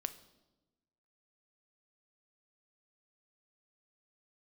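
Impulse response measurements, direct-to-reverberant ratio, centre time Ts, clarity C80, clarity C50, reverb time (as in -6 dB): 10.5 dB, 6 ms, 17.0 dB, 14.5 dB, 1.1 s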